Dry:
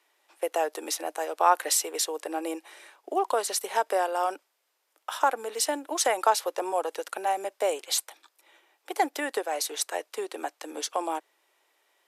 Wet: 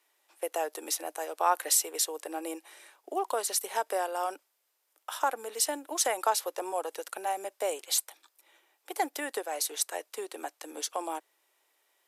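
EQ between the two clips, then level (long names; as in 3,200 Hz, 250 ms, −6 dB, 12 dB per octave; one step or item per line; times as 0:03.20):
high-shelf EQ 7,500 Hz +9.5 dB
−5.0 dB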